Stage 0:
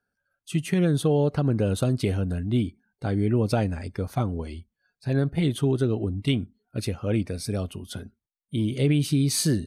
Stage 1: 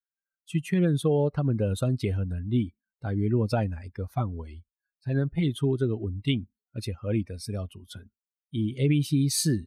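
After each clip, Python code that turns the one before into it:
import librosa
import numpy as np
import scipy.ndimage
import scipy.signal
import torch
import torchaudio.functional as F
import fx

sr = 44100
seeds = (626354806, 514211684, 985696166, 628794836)

y = fx.bin_expand(x, sr, power=1.5)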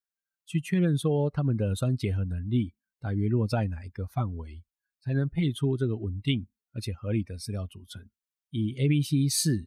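y = fx.peak_eq(x, sr, hz=510.0, db=-3.5, octaves=1.6)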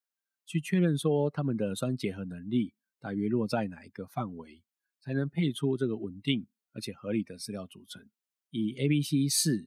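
y = scipy.signal.sosfilt(scipy.signal.butter(4, 160.0, 'highpass', fs=sr, output='sos'), x)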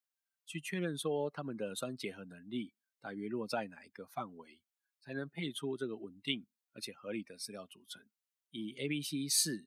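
y = fx.highpass(x, sr, hz=630.0, slope=6)
y = F.gain(torch.from_numpy(y), -2.5).numpy()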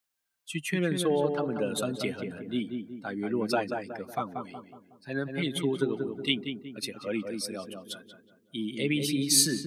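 y = fx.echo_filtered(x, sr, ms=184, feedback_pct=48, hz=1300.0, wet_db=-4.5)
y = F.gain(torch.from_numpy(y), 8.5).numpy()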